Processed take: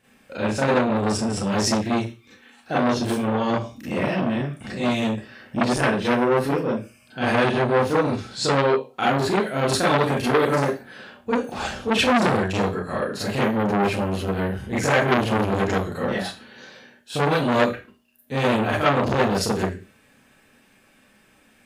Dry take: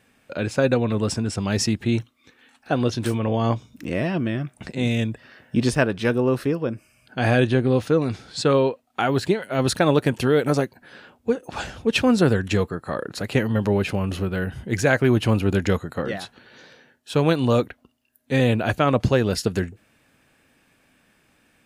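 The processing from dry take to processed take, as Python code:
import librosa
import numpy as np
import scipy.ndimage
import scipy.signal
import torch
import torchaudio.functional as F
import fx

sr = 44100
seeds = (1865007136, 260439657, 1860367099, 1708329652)

y = fx.rev_schroeder(x, sr, rt60_s=0.31, comb_ms=29, drr_db=-8.5)
y = fx.transformer_sat(y, sr, knee_hz=1800.0)
y = F.gain(torch.from_numpy(y), -5.0).numpy()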